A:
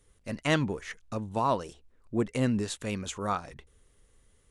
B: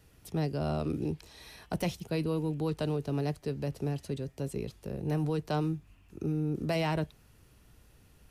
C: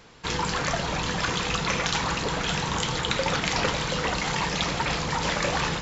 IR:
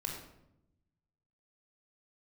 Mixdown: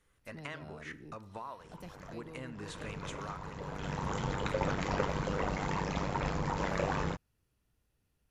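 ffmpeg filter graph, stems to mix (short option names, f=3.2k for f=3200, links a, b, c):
-filter_complex "[0:a]equalizer=f=1.5k:t=o:w=2.5:g=13,acompressor=threshold=-29dB:ratio=6,volume=-14dB,asplit=3[a][b][c];[b]volume=-12.5dB[d];[1:a]volume=-18dB[e];[2:a]lowpass=6.9k,equalizer=f=4k:w=0.57:g=-14.5,tremolo=f=97:d=0.75,adelay=1350,volume=-1.5dB,afade=t=in:st=2.55:d=0.26:silence=0.266073,asplit=2[f][g];[g]volume=-19.5dB[h];[c]apad=whole_len=316173[i];[f][i]sidechaincompress=threshold=-57dB:ratio=10:attack=49:release=684[j];[3:a]atrim=start_sample=2205[k];[d][h]amix=inputs=2:normalize=0[l];[l][k]afir=irnorm=-1:irlink=0[m];[a][e][j][m]amix=inputs=4:normalize=0"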